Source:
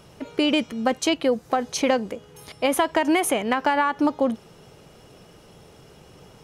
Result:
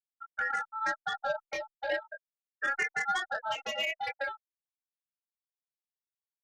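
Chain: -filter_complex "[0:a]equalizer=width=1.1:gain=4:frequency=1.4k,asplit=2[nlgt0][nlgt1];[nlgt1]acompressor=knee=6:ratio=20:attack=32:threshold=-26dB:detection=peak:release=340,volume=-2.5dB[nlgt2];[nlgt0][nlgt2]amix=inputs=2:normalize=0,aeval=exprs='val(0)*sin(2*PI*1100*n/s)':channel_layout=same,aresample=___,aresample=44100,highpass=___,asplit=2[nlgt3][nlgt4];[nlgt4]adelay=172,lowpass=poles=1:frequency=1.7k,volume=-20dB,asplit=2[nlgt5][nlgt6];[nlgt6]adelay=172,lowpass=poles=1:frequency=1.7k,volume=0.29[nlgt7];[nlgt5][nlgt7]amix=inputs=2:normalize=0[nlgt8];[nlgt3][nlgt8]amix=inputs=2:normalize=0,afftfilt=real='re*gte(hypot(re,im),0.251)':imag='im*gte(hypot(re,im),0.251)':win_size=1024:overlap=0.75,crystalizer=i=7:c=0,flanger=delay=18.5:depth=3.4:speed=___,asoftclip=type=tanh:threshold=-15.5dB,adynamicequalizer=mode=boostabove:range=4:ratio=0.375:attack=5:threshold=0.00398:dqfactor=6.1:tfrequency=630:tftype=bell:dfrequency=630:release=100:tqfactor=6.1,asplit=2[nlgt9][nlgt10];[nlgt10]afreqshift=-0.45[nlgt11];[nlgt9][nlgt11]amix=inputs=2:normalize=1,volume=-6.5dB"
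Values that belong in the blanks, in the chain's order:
8000, 350, 0.94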